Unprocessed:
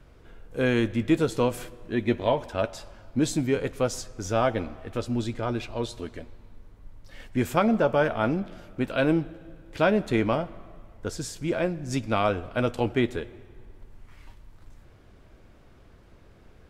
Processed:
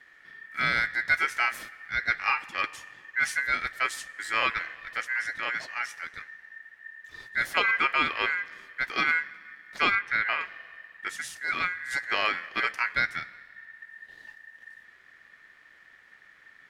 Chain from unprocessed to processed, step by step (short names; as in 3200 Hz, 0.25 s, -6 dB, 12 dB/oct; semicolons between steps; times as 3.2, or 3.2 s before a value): 9.95–10.41 LPF 1200 Hz 6 dB/oct; ring modulator 1800 Hz